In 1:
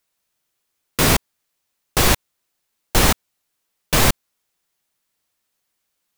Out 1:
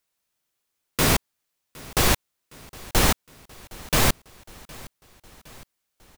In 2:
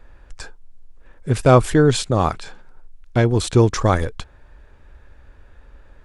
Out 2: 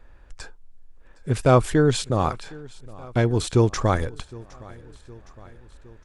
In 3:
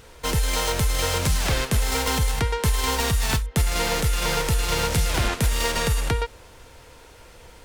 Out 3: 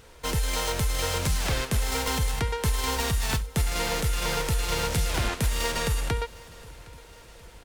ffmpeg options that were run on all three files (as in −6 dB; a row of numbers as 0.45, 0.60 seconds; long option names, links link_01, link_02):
-af "aecho=1:1:763|1526|2289|3052:0.0794|0.0469|0.0277|0.0163,volume=-4dB"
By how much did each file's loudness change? −4.5, −4.0, −4.0 LU